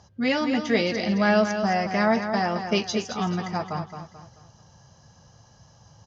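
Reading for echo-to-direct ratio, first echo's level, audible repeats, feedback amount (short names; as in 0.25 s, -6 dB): -7.5 dB, -8.0 dB, 4, 38%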